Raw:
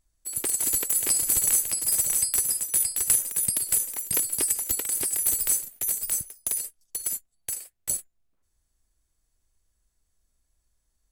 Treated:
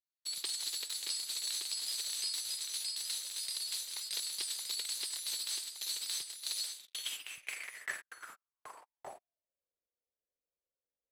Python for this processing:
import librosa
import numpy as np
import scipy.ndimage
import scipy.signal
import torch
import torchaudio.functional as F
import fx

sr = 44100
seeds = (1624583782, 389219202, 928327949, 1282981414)

y = fx.rider(x, sr, range_db=5, speed_s=0.5)
y = fx.leveller(y, sr, passes=5)
y = fx.high_shelf(y, sr, hz=2000.0, db=-10.0)
y = y + 10.0 ** (-6.0 / 20.0) * np.pad(y, (int(1169 * sr / 1000.0), 0))[:len(y)]
y = fx.filter_sweep_bandpass(y, sr, from_hz=4100.0, to_hz=510.0, start_s=6.71, end_s=9.7, q=6.5)
y = y * 10.0 ** (2.0 / 20.0)